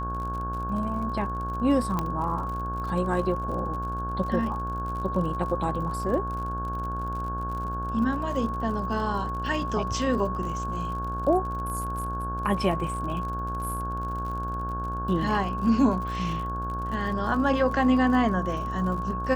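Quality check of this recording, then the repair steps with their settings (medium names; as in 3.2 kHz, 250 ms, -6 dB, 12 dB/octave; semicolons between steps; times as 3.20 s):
buzz 60 Hz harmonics 28 -33 dBFS
crackle 57 per s -35 dBFS
whine 1.1 kHz -31 dBFS
1.99 s: pop -14 dBFS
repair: de-click; de-hum 60 Hz, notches 28; band-stop 1.1 kHz, Q 30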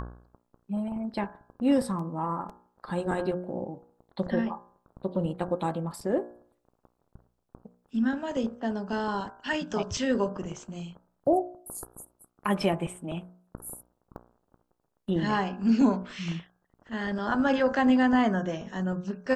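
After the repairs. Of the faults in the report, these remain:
1.99 s: pop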